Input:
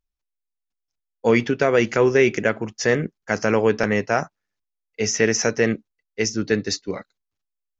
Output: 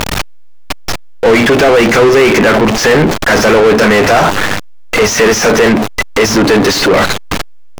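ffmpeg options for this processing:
ffmpeg -i in.wav -filter_complex "[0:a]aeval=exprs='val(0)+0.5*0.1*sgn(val(0))':channel_layout=same,asplit=2[link_01][link_02];[link_02]highpass=frequency=720:poles=1,volume=38dB,asoftclip=type=tanh:threshold=-4dB[link_03];[link_01][link_03]amix=inputs=2:normalize=0,lowpass=frequency=2000:poles=1,volume=-6dB,volume=3.5dB" out.wav

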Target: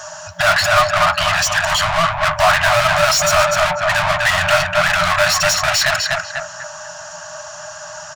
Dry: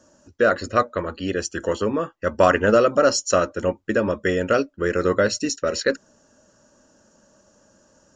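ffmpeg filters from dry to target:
ffmpeg -i in.wav -filter_complex "[0:a]asplit=2[link_01][link_02];[link_02]adelay=245,lowpass=frequency=2100:poles=1,volume=-8dB,asplit=2[link_03][link_04];[link_04]adelay=245,lowpass=frequency=2100:poles=1,volume=0.32,asplit=2[link_05][link_06];[link_06]adelay=245,lowpass=frequency=2100:poles=1,volume=0.32,asplit=2[link_07][link_08];[link_08]adelay=245,lowpass=frequency=2100:poles=1,volume=0.32[link_09];[link_01][link_03][link_05][link_07][link_09]amix=inputs=5:normalize=0,asplit=2[link_10][link_11];[link_11]highpass=frequency=720:poles=1,volume=39dB,asoftclip=type=tanh:threshold=-3dB[link_12];[link_10][link_12]amix=inputs=2:normalize=0,lowpass=frequency=4100:poles=1,volume=-6dB,afftfilt=real='re*(1-between(b*sr/4096,180,590))':imag='im*(1-between(b*sr/4096,180,590))':win_size=4096:overlap=0.75,volume=-1.5dB" out.wav

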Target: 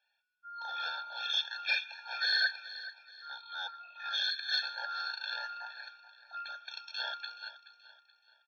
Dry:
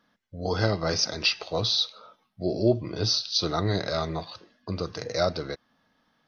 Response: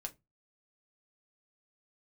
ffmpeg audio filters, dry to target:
-af "afftfilt=real='real(if(between(b,1,1012),(2*floor((b-1)/92)+1)*92-b,b),0)':imag='imag(if(between(b,1,1012),(2*floor((b-1)/92)+1)*92-b,b),0)*if(between(b,1,1012),-1,1)':win_size=2048:overlap=0.75,highpass=frequency=1500:width=0.5412,highpass=frequency=1500:width=1.3066,volume=23dB,asoftclip=hard,volume=-23dB,aecho=1:1:316|632|948:0.178|0.0676|0.0257,aresample=16000,aresample=44100,asetrate=32667,aresample=44100,afftfilt=real='re*eq(mod(floor(b*sr/1024/460),2),1)':imag='im*eq(mod(floor(b*sr/1024/460),2),1)':win_size=1024:overlap=0.75"

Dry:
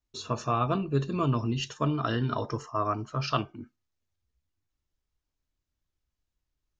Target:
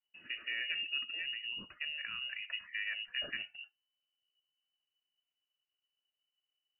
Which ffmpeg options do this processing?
ffmpeg -i in.wav -filter_complex "[0:a]asplit=3[link_01][link_02][link_03];[link_01]afade=type=out:start_time=1.03:duration=0.02[link_04];[link_02]acompressor=threshold=-31dB:ratio=4,afade=type=in:start_time=1.03:duration=0.02,afade=type=out:start_time=2.47:duration=0.02[link_05];[link_03]afade=type=in:start_time=2.47:duration=0.02[link_06];[link_04][link_05][link_06]amix=inputs=3:normalize=0,alimiter=limit=-20.5dB:level=0:latency=1:release=83,lowpass=frequency=2600:width_type=q:width=0.5098,lowpass=frequency=2600:width_type=q:width=0.6013,lowpass=frequency=2600:width_type=q:width=0.9,lowpass=frequency=2600:width_type=q:width=2.563,afreqshift=-3000,volume=-7dB" out.wav

